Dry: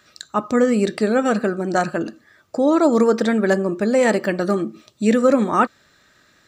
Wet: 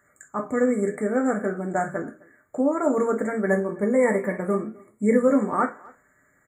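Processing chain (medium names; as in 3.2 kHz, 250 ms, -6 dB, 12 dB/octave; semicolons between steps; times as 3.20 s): FFT band-reject 2.3–6.6 kHz; 3.46–5.28 s: rippled EQ curve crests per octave 0.89, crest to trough 8 dB; flange 0.62 Hz, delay 9.2 ms, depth 7.4 ms, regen -81%; speakerphone echo 260 ms, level -24 dB; gated-style reverb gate 90 ms falling, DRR 2.5 dB; trim -3 dB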